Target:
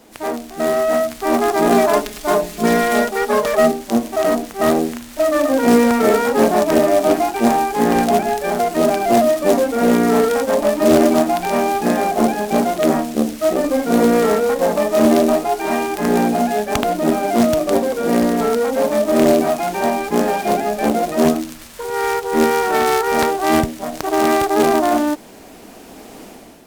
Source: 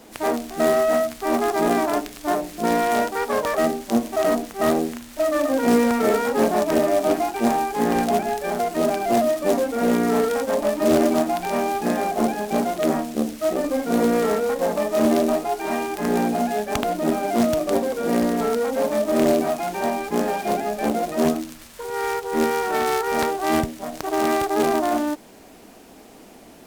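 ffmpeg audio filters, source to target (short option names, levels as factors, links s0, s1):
-filter_complex "[0:a]asettb=1/sr,asplit=3[s0][s1][s2];[s0]atrim=end=1.724[s3];[s1]atrim=start=1.72:end=3.72,asetpts=PTS-STARTPTS,afade=t=in:d=0.004:c=qsin,afade=t=out:st=1.996:d=0.004:c=qsin,aecho=1:1:4.8:0.8,atrim=end_sample=88200[s4];[s2]atrim=start=3.716[s5];[s3][s4]acrossfade=d=0.004:c1=hsin:c2=qsin[s6];[s6][s5]acrossfade=d=0.004:c1=qsin:c2=hsin,dynaudnorm=f=610:g=3:m=3.76,volume=0.891"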